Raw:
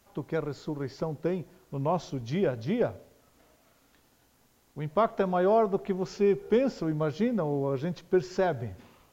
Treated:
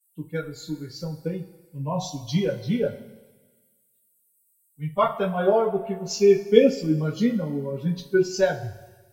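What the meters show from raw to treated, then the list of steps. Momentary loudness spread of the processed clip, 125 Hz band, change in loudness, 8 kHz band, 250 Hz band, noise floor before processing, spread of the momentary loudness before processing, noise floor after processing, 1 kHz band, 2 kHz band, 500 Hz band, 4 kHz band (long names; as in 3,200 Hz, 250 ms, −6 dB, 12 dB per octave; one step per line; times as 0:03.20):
16 LU, +4.5 dB, +5.0 dB, can't be measured, +4.5 dB, −65 dBFS, 11 LU, −67 dBFS, +2.0 dB, +5.5 dB, +5.0 dB, +10.0 dB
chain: spectral dynamics exaggerated over time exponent 2
high-shelf EQ 3,200 Hz +9.5 dB
in parallel at −2.5 dB: downward compressor, threshold −41 dBFS, peak gain reduction 18.5 dB
on the sum: coupled-rooms reverb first 0.21 s, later 2 s, from −20 dB, DRR −9.5 dB
multiband upward and downward expander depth 40%
level −4.5 dB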